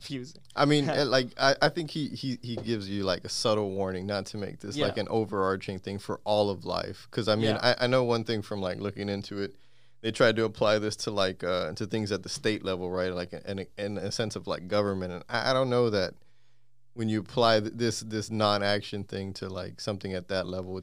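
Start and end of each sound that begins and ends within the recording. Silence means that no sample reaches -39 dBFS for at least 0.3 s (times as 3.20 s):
10.04–16.09 s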